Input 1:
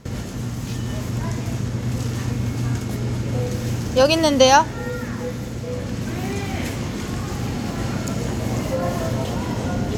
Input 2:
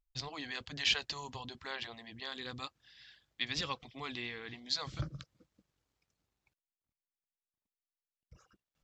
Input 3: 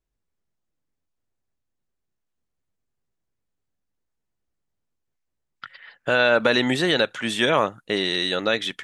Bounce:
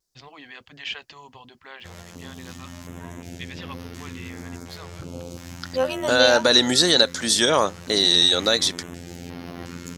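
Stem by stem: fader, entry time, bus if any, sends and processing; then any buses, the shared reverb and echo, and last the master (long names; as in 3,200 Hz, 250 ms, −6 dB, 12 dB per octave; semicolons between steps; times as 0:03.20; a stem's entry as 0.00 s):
−5.5 dB, 1.80 s, no send, phases set to zero 86.6 Hz; notch on a step sequencer 2.8 Hz 270–7,500 Hz
0.0 dB, 0.00 s, no send, flat-topped bell 5,300 Hz −9.5 dB 1.2 octaves
+1.5 dB, 0.00 s, no send, high shelf with overshoot 3,600 Hz +10.5 dB, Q 3; pitch vibrato 1.3 Hz 42 cents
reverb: not used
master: low-shelf EQ 110 Hz −11.5 dB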